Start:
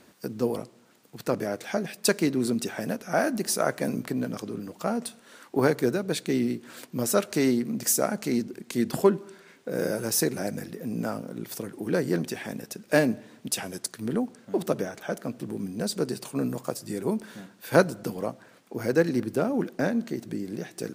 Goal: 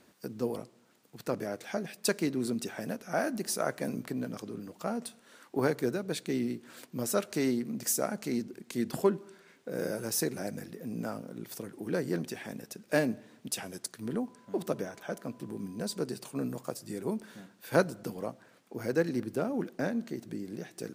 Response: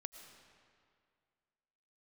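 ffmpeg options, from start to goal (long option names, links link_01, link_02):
-filter_complex "[0:a]asettb=1/sr,asplit=3[link_01][link_02][link_03];[link_01]atrim=end=14.034[link_04];[link_02]atrim=start=14.03:end=16.04,asetpts=PTS-STARTPTS,afade=type=in:duration=0.004:curve=qsin,afade=type=out:start_time=2.006:duration=0.004:curve=qsin,aeval=exprs='val(0)+0.00178*sin(2*PI*1000*n/s)':channel_layout=same[link_05];[link_03]atrim=start=16.036[link_06];[link_04][link_05]acrossfade=duration=0.004:curve1=hsin:curve2=qsin[link_07];[link_07][link_06]acrossfade=duration=0.004:curve1=qsin:curve2=hsin,volume=-6dB"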